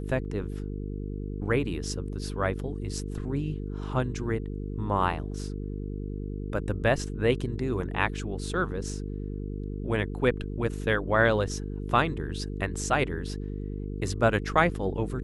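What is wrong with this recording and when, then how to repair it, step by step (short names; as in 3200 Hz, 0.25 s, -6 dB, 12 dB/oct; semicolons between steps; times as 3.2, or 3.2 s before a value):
buzz 50 Hz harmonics 9 -34 dBFS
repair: de-hum 50 Hz, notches 9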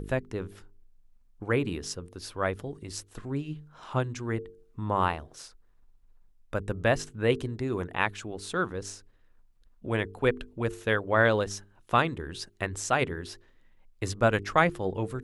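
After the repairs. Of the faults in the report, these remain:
none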